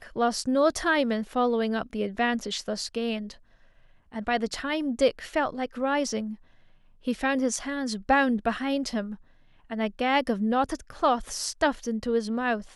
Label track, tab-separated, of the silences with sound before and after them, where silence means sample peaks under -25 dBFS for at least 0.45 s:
3.180000	4.160000	silence
6.200000	7.080000	silence
9.010000	9.720000	silence